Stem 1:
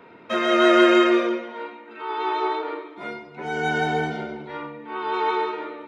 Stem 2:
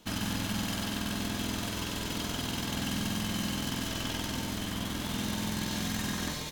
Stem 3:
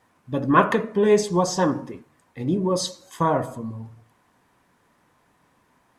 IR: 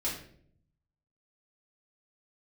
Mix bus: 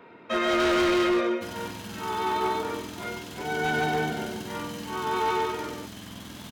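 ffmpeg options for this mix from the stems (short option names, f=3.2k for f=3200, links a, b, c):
-filter_complex "[0:a]volume=18.5dB,asoftclip=hard,volume=-18.5dB,volume=-2dB[a];[1:a]highpass=69,adelay=1350,volume=-6.5dB[b];[a][b]amix=inputs=2:normalize=0"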